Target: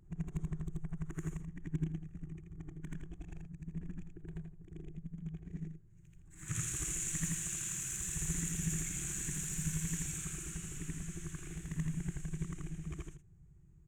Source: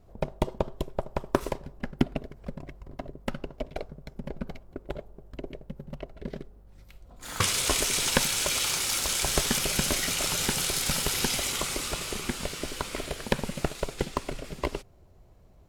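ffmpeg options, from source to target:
-filter_complex "[0:a]afftfilt=real='re':imag='-im':win_size=8192:overlap=0.75,adynamicequalizer=threshold=0.00282:dfrequency=380:dqfactor=2.1:tfrequency=380:tqfactor=2.1:attack=5:release=100:ratio=0.375:range=2:mode=cutabove:tftype=bell,acrossover=split=5700[a][b];[a]asoftclip=type=tanh:threshold=-25.5dB[c];[c][b]amix=inputs=2:normalize=0,asetrate=49833,aresample=44100,firequalizer=gain_entry='entry(110,0);entry(160,12);entry(230,-15);entry(340,1);entry(520,-28);entry(860,-19);entry(1800,-6);entry(4800,-26);entry(6800,3);entry(11000,-15)':delay=0.05:min_phase=1,volume=-1.5dB"

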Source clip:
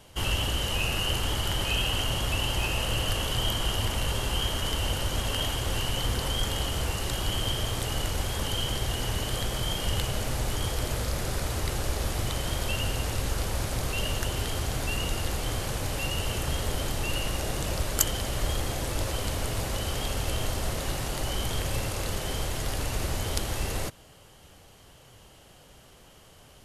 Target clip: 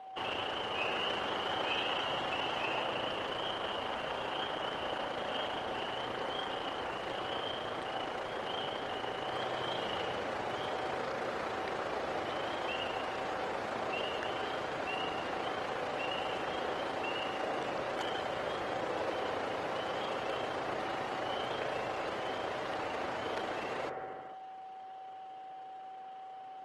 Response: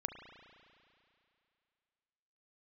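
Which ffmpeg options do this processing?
-filter_complex "[0:a]tremolo=f=28:d=0.4,aeval=exprs='0.0841*(abs(mod(val(0)/0.0841+3,4)-2)-1)':c=same,aeval=exprs='val(0)+0.00447*sin(2*PI*760*n/s)':c=same,highpass=390,lowpass=2.2k[a];[1:a]atrim=start_sample=2205,afade=t=out:st=0.31:d=0.01,atrim=end_sample=14112,asetrate=23814,aresample=44100[b];[a][b]afir=irnorm=-1:irlink=0" -ar 48000 -c:a libopus -b:a 20k

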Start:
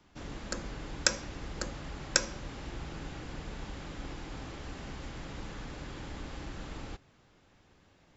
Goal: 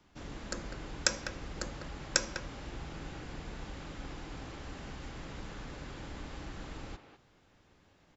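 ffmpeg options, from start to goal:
-filter_complex "[0:a]asplit=2[a][b];[b]adelay=200,highpass=300,lowpass=3.4k,asoftclip=type=hard:threshold=-13dB,volume=-8dB[c];[a][c]amix=inputs=2:normalize=0,volume=-2dB"

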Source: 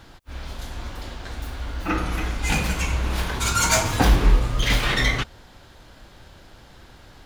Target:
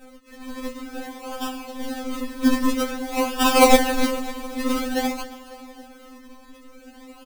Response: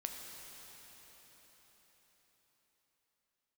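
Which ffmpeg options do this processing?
-filter_complex "[0:a]highpass=f=180:p=1,asplit=2[a][b];[b]acompressor=threshold=-33dB:ratio=6,volume=2dB[c];[a][c]amix=inputs=2:normalize=0,aexciter=amount=10.8:drive=6.8:freq=5.7k,acrusher=samples=42:mix=1:aa=0.000001:lfo=1:lforange=42:lforate=0.51,asplit=2[d][e];[e]aecho=0:1:273|546|819|1092|1365:0.126|0.0743|0.0438|0.0259|0.0153[f];[d][f]amix=inputs=2:normalize=0,afftfilt=real='re*3.46*eq(mod(b,12),0)':imag='im*3.46*eq(mod(b,12),0)':win_size=2048:overlap=0.75,volume=-6.5dB"

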